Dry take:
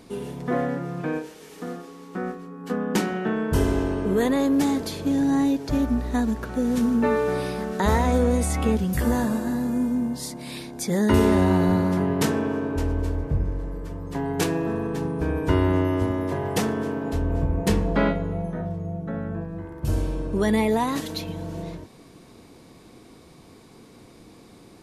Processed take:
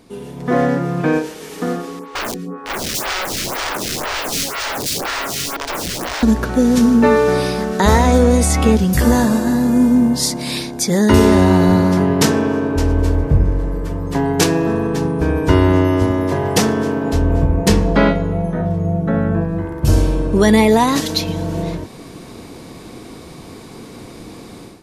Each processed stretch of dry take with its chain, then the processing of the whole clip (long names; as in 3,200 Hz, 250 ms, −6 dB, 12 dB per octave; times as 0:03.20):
0:01.99–0:06.23: downward compressor 2 to 1, threshold −28 dBFS + wrap-around overflow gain 29 dB + phaser with staggered stages 2 Hz
whole clip: dynamic equaliser 5,400 Hz, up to +6 dB, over −51 dBFS, Q 1.3; automatic gain control gain up to 13.5 dB